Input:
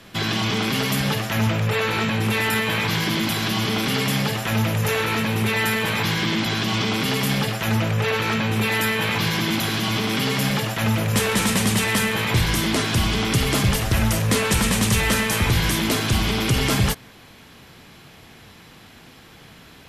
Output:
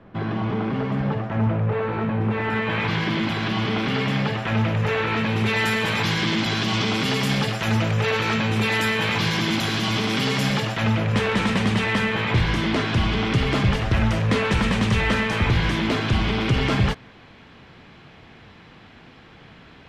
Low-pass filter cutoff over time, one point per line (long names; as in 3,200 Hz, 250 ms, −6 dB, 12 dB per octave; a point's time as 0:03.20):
0:02.24 1,100 Hz
0:02.87 2,800 Hz
0:05.09 2,800 Hz
0:05.68 6,900 Hz
0:10.50 6,900 Hz
0:11.07 3,100 Hz